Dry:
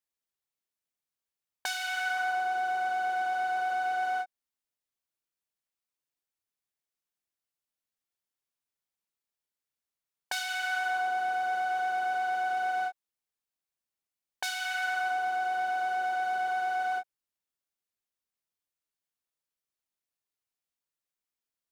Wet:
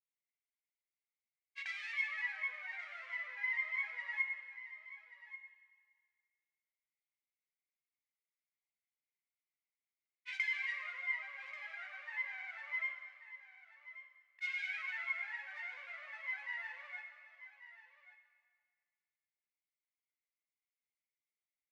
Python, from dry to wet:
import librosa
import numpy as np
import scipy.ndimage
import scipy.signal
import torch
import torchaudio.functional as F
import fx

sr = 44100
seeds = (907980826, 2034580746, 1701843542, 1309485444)

p1 = fx.granulator(x, sr, seeds[0], grain_ms=100.0, per_s=20.0, spray_ms=100.0, spread_st=7)
p2 = fx.ladder_bandpass(p1, sr, hz=2200.0, resonance_pct=85)
p3 = p2 + fx.echo_single(p2, sr, ms=1136, db=-14.5, dry=0)
p4 = fx.rev_plate(p3, sr, seeds[1], rt60_s=1.8, hf_ratio=1.0, predelay_ms=0, drr_db=5.5)
y = p4 * 10.0 ** (-1.0 / 20.0)